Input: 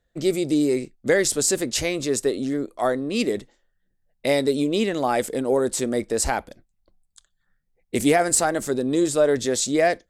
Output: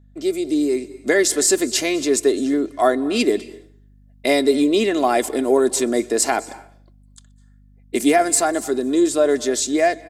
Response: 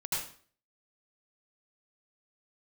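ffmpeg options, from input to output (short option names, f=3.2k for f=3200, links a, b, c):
-filter_complex "[0:a]highpass=f=180:w=0.5412,highpass=f=180:w=1.3066,aecho=1:1:2.9:0.55,asplit=2[a][b];[1:a]atrim=start_sample=2205,adelay=125[c];[b][c]afir=irnorm=-1:irlink=0,volume=-23dB[d];[a][d]amix=inputs=2:normalize=0,dynaudnorm=f=370:g=5:m=11.5dB,aeval=exprs='val(0)+0.00501*(sin(2*PI*50*n/s)+sin(2*PI*2*50*n/s)/2+sin(2*PI*3*50*n/s)/3+sin(2*PI*4*50*n/s)/4+sin(2*PI*5*50*n/s)/5)':c=same,volume=-3dB"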